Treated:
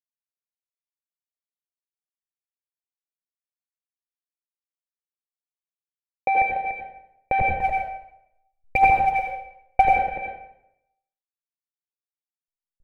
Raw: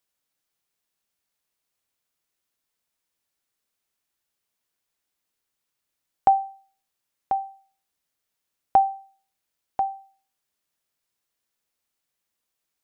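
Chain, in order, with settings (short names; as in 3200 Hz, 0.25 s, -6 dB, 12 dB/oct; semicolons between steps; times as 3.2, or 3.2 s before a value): level-crossing sampler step -22 dBFS; dynamic EQ 780 Hz, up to +6 dB, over -29 dBFS, Q 2.4; AGC gain up to 10 dB; sample leveller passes 5; vocal tract filter e; echo 0.291 s -9 dB; 7.41–9.85 phaser 1.4 Hz, delay 1.9 ms, feedback 76%; HPF 110 Hz 6 dB/oct; low shelf 190 Hz +7 dB; reverb RT60 0.80 s, pre-delay 74 ms, DRR 0 dB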